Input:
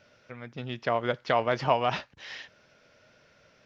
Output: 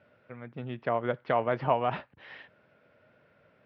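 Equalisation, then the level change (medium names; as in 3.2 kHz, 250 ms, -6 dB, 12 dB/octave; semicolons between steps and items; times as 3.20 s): high-pass 82 Hz; distance through air 370 m; treble shelf 4.4 kHz -9.5 dB; 0.0 dB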